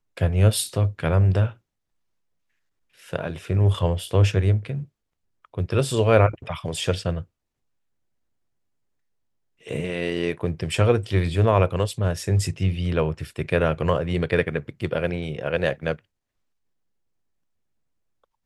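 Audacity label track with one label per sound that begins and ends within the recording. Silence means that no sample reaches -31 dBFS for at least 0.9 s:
3.130000	7.220000	sound
9.670000	15.950000	sound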